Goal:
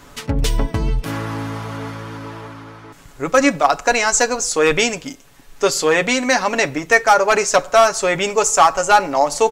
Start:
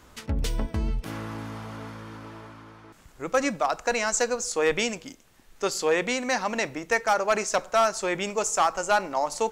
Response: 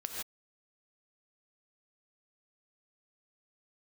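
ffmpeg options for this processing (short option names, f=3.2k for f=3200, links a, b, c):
-af "aecho=1:1:7.1:0.54,volume=9dB"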